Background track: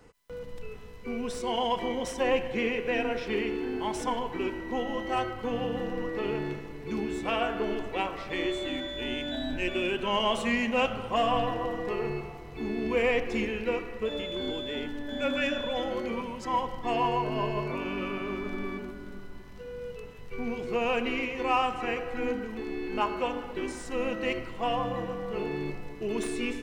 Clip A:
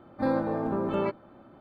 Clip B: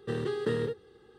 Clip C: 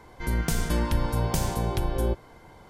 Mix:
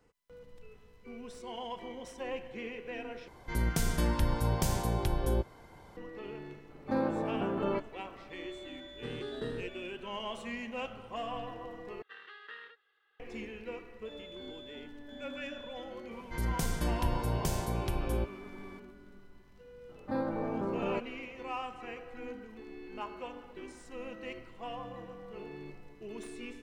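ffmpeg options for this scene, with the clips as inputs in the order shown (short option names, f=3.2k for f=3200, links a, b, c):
-filter_complex "[3:a]asplit=2[a][b];[1:a]asplit=2[c][d];[2:a]asplit=2[e][f];[0:a]volume=-12.5dB[g];[f]asuperpass=centerf=2000:order=4:qfactor=1.1[h];[d]alimiter=limit=-18.5dB:level=0:latency=1:release=31[i];[g]asplit=3[j][k][l];[j]atrim=end=3.284[m];[a]atrim=end=2.69,asetpts=PTS-STARTPTS,volume=-4dB[n];[k]atrim=start=5.966:end=12.024[o];[h]atrim=end=1.18,asetpts=PTS-STARTPTS,volume=-4dB[p];[l]atrim=start=13.196[q];[c]atrim=end=1.6,asetpts=PTS-STARTPTS,volume=-4.5dB,afade=t=in:d=0.004:c=hsin,afade=t=out:st=1.596:d=0.004:c=hsin,adelay=6690[r];[e]atrim=end=1.18,asetpts=PTS-STARTPTS,volume=-9dB,afade=t=in:d=0.004:c=hsin,afade=t=out:st=1.176:d=0.004:c=hsin,adelay=8950[s];[b]atrim=end=2.69,asetpts=PTS-STARTPTS,volume=-6.5dB,afade=t=in:d=0.004:c=hsin,afade=t=out:st=2.686:d=0.004:c=hsin,adelay=16110[t];[i]atrim=end=1.6,asetpts=PTS-STARTPTS,volume=-5.5dB,afade=t=in:d=0.004:c=hsin,afade=t=out:st=1.596:d=0.004:c=hsin,adelay=19890[u];[m][n]acrossfade=d=0.004:c1=hsin:c2=hsin[v];[v][o]acrossfade=d=0.004:c1=hsin:c2=hsin[w];[w][p]acrossfade=d=0.004:c1=hsin:c2=hsin[x];[x][q]acrossfade=d=0.004:c1=hsin:c2=hsin[y];[y][r][s][t][u]amix=inputs=5:normalize=0"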